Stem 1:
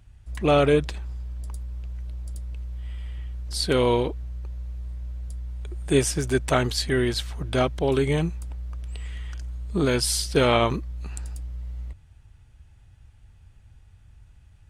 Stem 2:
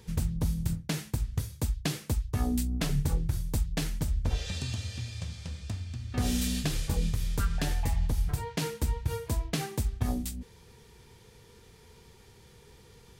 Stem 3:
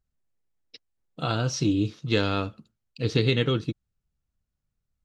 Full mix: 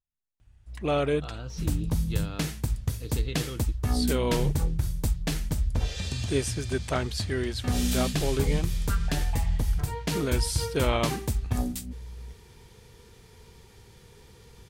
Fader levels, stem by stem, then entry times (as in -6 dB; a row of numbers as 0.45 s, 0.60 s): -7.0 dB, +2.0 dB, -14.0 dB; 0.40 s, 1.50 s, 0.00 s